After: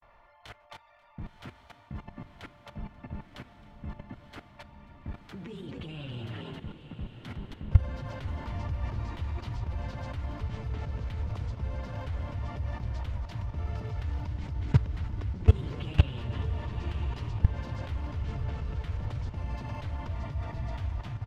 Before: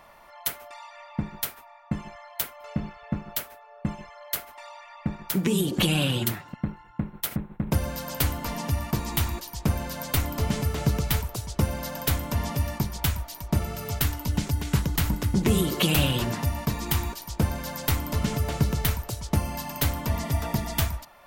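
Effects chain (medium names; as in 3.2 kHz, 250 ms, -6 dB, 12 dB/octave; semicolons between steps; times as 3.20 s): granulator 100 ms, grains 20 per s, spray 14 ms, pitch spread up and down by 0 st; frequency-shifting echo 268 ms, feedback 34%, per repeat +44 Hz, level -10 dB; level held to a coarse grid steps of 20 dB; low-pass 3 kHz 12 dB/octave; resonant low shelf 130 Hz +7.5 dB, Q 1.5; on a send: echo that smears into a reverb 992 ms, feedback 47%, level -10 dB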